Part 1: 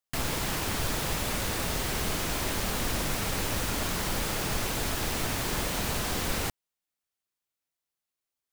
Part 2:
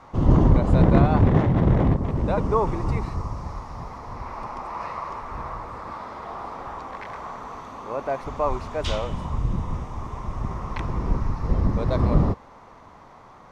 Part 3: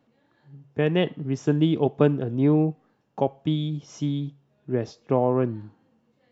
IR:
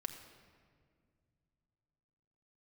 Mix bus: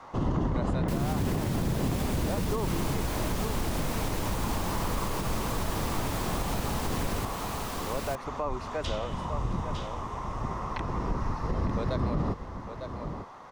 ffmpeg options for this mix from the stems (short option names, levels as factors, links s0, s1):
-filter_complex "[0:a]adelay=750,volume=1.26,asplit=2[s0][s1];[s1]volume=0.531[s2];[1:a]lowshelf=f=220:g=-9,bandreject=f=2300:w=17,volume=1.19,asplit=2[s3][s4];[s4]volume=0.211[s5];[s2][s5]amix=inputs=2:normalize=0,aecho=0:1:902:1[s6];[s0][s3][s6]amix=inputs=3:normalize=0,acrossover=split=330|1100[s7][s8][s9];[s7]acompressor=threshold=0.0891:ratio=4[s10];[s8]acompressor=threshold=0.0178:ratio=4[s11];[s9]acompressor=threshold=0.0126:ratio=4[s12];[s10][s11][s12]amix=inputs=3:normalize=0,alimiter=limit=0.106:level=0:latency=1:release=66"